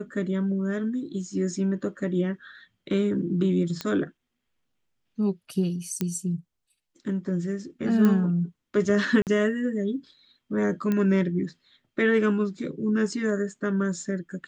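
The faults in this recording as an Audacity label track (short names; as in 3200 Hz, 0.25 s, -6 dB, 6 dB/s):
3.810000	3.810000	pop -15 dBFS
6.010000	6.010000	pop -13 dBFS
8.050000	8.050000	pop -12 dBFS
9.220000	9.270000	gap 48 ms
10.920000	10.920000	pop -15 dBFS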